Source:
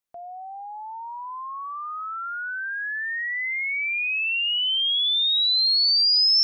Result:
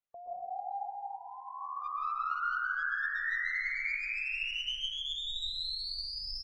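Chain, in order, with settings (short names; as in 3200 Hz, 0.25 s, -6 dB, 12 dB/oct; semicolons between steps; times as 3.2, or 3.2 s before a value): 0.72–1.82 Chebyshev band-stop 480–1300 Hz, order 2; spectral gate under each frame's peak -30 dB strong; 4.5–5.31 comb 7.5 ms, depth 89%; compressor 2:1, threshold -38 dBFS, peak gain reduction 12 dB; flange 1.7 Hz, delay 1.3 ms, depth 1.1 ms, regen +56%; one-sided clip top -37 dBFS, bottom -28 dBFS; air absorption 160 m; feedback echo 0.185 s, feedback 32%, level -15.5 dB; plate-style reverb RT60 2.8 s, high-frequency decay 0.25×, pre-delay 0.11 s, DRR -6.5 dB; gain -1 dB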